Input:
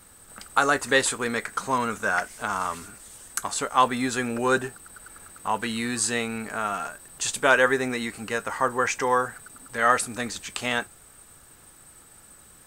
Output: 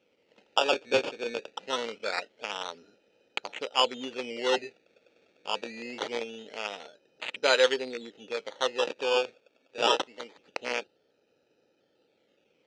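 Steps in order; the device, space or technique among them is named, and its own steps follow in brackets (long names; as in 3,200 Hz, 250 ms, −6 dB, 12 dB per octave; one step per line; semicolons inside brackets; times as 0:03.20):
adaptive Wiener filter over 41 samples
0:09.37–0:10.38: spectral tilt +3.5 dB per octave
circuit-bent sampling toy (sample-and-hold swept by an LFO 15×, swing 100% 0.24 Hz; loudspeaker in its box 500–5,600 Hz, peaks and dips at 500 Hz +5 dB, 710 Hz −6 dB, 1,100 Hz −10 dB, 1,600 Hz −7 dB, 2,600 Hz +5 dB, 5,200 Hz −3 dB)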